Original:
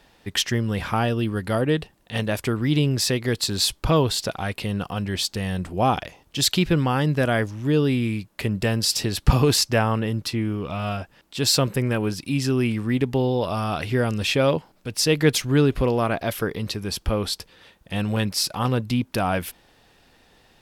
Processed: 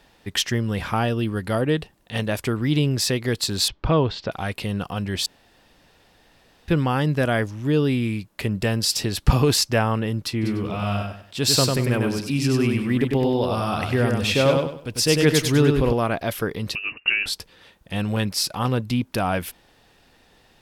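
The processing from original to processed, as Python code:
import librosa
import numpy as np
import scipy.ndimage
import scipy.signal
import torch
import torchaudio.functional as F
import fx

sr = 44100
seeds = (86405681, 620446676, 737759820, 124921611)

y = fx.gaussian_blur(x, sr, sigma=2.2, at=(3.68, 4.32))
y = fx.echo_feedback(y, sr, ms=98, feedback_pct=30, wet_db=-3.5, at=(10.41, 15.92), fade=0.02)
y = fx.freq_invert(y, sr, carrier_hz=2800, at=(16.75, 17.26))
y = fx.edit(y, sr, fx.room_tone_fill(start_s=5.26, length_s=1.42), tone=tone)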